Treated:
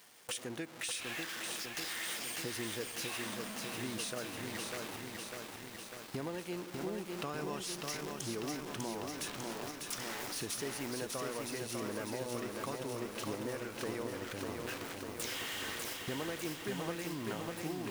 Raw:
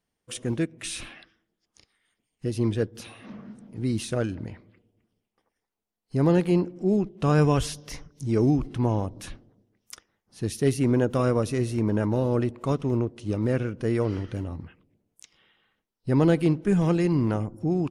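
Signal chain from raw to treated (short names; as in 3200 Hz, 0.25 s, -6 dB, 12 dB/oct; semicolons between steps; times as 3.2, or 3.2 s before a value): zero-crossing step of -36 dBFS; HPF 880 Hz 6 dB/oct; gate with hold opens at -35 dBFS; compressor 6:1, threshold -45 dBFS, peak gain reduction 20.5 dB; lo-fi delay 0.598 s, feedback 80%, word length 10-bit, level -3 dB; gain +6 dB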